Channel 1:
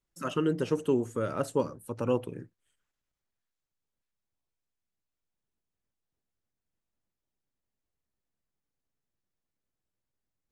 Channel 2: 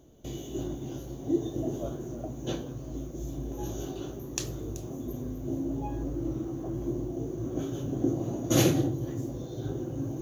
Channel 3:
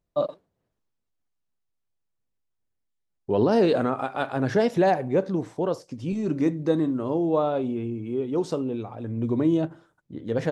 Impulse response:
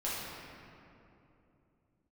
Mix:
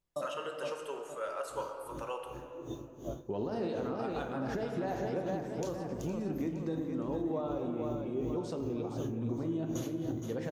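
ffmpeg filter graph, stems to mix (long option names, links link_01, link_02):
-filter_complex "[0:a]highpass=frequency=580:width=0.5412,highpass=frequency=580:width=1.3066,volume=-6dB,asplit=3[link_01][link_02][link_03];[link_02]volume=-6dB[link_04];[1:a]aeval=exprs='val(0)*pow(10,-22*(0.5-0.5*cos(2*PI*2.7*n/s))/20)':channel_layout=same,adelay=1250,volume=-2.5dB,asplit=2[link_05][link_06];[link_06]volume=-19dB[link_07];[2:a]volume=-9dB,asplit=3[link_08][link_09][link_10];[link_09]volume=-11dB[link_11];[link_10]volume=-7.5dB[link_12];[link_03]apad=whole_len=505614[link_13];[link_05][link_13]sidechaincompress=threshold=-44dB:ratio=3:attack=16:release=1110[link_14];[link_14][link_08]amix=inputs=2:normalize=0,acompressor=threshold=-33dB:ratio=6,volume=0dB[link_15];[3:a]atrim=start_sample=2205[link_16];[link_04][link_11]amix=inputs=2:normalize=0[link_17];[link_17][link_16]afir=irnorm=-1:irlink=0[link_18];[link_07][link_12]amix=inputs=2:normalize=0,aecho=0:1:464|928|1392|1856|2320|2784:1|0.45|0.202|0.0911|0.041|0.0185[link_19];[link_01][link_15][link_18][link_19]amix=inputs=4:normalize=0,alimiter=level_in=1.5dB:limit=-24dB:level=0:latency=1:release=256,volume=-1.5dB"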